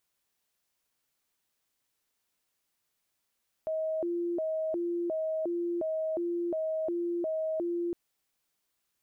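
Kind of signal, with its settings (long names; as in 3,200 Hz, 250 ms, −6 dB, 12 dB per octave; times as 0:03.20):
siren hi-lo 345–634 Hz 1.4 per second sine −28.5 dBFS 4.26 s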